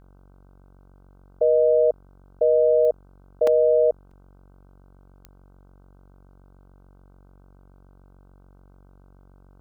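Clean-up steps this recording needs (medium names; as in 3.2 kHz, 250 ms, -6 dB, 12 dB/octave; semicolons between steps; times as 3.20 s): de-click; de-hum 46.9 Hz, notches 33; interpolate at 3.47/4.11 s, 3.5 ms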